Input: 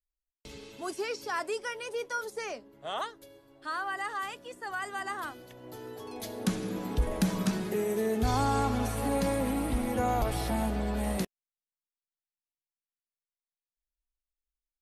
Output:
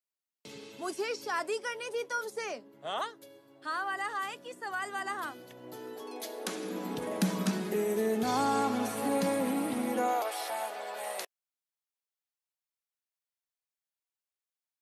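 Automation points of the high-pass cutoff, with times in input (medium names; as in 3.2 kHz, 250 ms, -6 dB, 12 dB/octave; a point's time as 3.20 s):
high-pass 24 dB/octave
5.68 s 130 Hz
6.39 s 370 Hz
6.96 s 170 Hz
9.88 s 170 Hz
10.30 s 540 Hz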